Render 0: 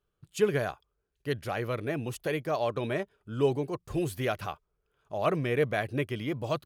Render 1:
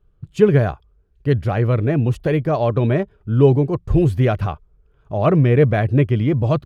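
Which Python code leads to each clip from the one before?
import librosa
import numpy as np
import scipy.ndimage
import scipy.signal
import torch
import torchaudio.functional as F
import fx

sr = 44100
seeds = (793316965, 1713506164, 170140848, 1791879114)

y = fx.riaa(x, sr, side='playback')
y = y * librosa.db_to_amplitude(8.0)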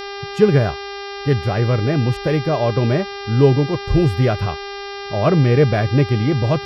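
y = fx.dmg_buzz(x, sr, base_hz=400.0, harmonics=14, level_db=-30.0, tilt_db=-4, odd_only=False)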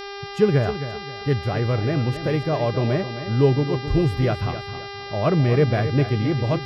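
y = fx.echo_feedback(x, sr, ms=264, feedback_pct=34, wet_db=-11.0)
y = y * librosa.db_to_amplitude(-4.5)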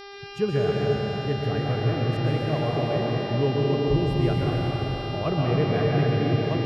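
y = fx.rev_plate(x, sr, seeds[0], rt60_s=4.7, hf_ratio=0.9, predelay_ms=110, drr_db=-4.0)
y = y * librosa.db_to_amplitude(-7.5)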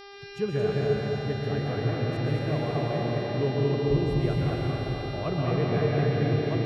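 y = x + 10.0 ** (-4.5 / 20.0) * np.pad(x, (int(222 * sr / 1000.0), 0))[:len(x)]
y = y * librosa.db_to_amplitude(-4.0)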